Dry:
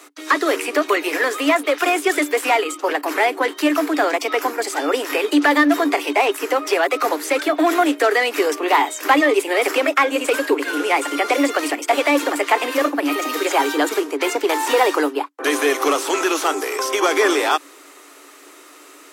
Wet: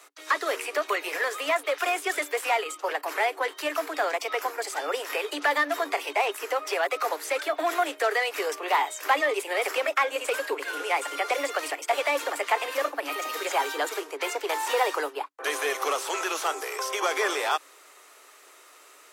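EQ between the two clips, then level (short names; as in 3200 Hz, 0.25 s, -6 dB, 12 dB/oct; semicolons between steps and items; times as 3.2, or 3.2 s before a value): HPF 450 Hz 24 dB/oct; -7.5 dB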